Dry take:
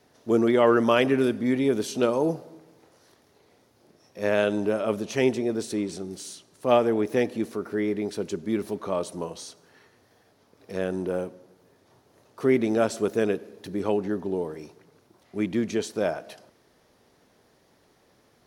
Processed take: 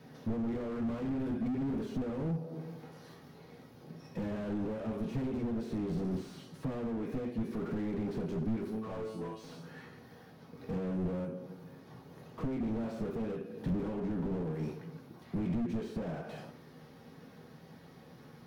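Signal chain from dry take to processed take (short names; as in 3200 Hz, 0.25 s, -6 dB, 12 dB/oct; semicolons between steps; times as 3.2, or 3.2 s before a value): 8.69–9.44 resonator 110 Hz, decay 0.37 s, harmonics all, mix 100%; reverb RT60 0.45 s, pre-delay 3 ms, DRR -1 dB; compressor 16:1, threshold -33 dBFS, peak gain reduction 23.5 dB; ten-band EQ 125 Hz +7 dB, 250 Hz +7 dB, 500 Hz -3 dB, 8000 Hz -11 dB; slew limiter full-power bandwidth 5.4 Hz; gain +2 dB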